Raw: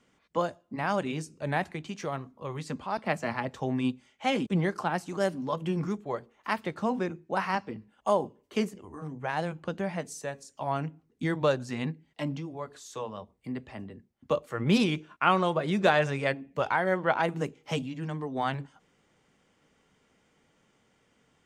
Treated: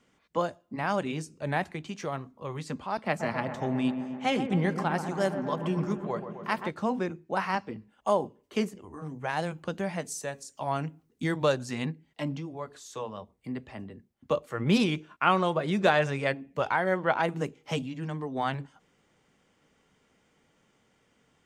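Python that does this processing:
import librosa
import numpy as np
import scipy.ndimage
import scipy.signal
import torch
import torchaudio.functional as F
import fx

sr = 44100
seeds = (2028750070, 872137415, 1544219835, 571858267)

y = fx.echo_wet_lowpass(x, sr, ms=129, feedback_pct=73, hz=1700.0, wet_db=-9, at=(3.19, 6.7), fade=0.02)
y = fx.high_shelf(y, sr, hz=4600.0, db=7.0, at=(9.07, 11.86))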